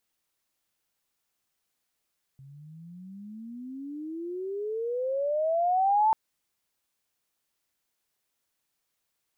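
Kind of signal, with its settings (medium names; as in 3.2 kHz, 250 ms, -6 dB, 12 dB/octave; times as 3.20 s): gliding synth tone sine, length 3.74 s, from 133 Hz, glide +33 st, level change +27.5 dB, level -18.5 dB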